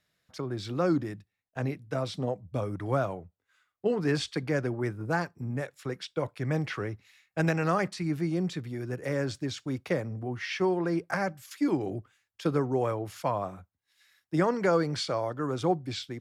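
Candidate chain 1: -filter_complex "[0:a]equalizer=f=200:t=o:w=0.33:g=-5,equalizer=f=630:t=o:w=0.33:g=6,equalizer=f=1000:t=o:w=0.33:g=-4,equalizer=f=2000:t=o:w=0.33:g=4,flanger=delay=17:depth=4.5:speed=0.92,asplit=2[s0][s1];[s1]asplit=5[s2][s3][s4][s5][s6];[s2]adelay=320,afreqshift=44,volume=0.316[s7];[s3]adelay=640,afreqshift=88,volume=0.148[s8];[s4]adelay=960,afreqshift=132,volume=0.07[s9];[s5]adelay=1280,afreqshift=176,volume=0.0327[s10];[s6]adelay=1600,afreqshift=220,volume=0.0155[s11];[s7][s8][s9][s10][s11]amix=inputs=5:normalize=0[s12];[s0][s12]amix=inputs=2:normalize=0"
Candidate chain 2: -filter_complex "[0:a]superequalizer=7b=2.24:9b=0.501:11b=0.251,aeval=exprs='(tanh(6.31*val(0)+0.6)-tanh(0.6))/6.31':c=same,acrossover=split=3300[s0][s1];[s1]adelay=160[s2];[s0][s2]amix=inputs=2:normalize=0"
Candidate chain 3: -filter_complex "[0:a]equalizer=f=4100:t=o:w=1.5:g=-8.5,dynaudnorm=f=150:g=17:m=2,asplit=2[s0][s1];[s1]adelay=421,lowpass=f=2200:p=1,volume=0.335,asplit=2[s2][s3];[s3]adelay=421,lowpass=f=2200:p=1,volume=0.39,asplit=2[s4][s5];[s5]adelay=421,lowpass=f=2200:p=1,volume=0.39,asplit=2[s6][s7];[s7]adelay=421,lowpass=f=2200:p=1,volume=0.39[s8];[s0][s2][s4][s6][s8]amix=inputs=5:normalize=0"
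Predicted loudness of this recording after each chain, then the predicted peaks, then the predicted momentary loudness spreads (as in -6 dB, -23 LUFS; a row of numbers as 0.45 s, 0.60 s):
-33.0 LUFS, -32.0 LUFS, -25.5 LUFS; -14.5 dBFS, -13.0 dBFS, -8.0 dBFS; 10 LU, 10 LU, 12 LU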